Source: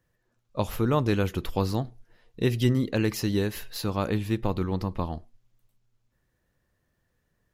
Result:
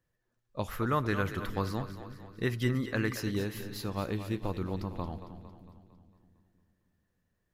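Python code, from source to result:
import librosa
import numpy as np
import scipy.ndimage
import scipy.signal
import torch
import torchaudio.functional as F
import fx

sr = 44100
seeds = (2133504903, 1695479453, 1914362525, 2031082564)

y = fx.band_shelf(x, sr, hz=1500.0, db=9.0, octaves=1.1, at=(0.68, 3.2))
y = fx.echo_split(y, sr, split_hz=320.0, low_ms=311, high_ms=227, feedback_pct=52, wet_db=-11)
y = y * librosa.db_to_amplitude(-7.0)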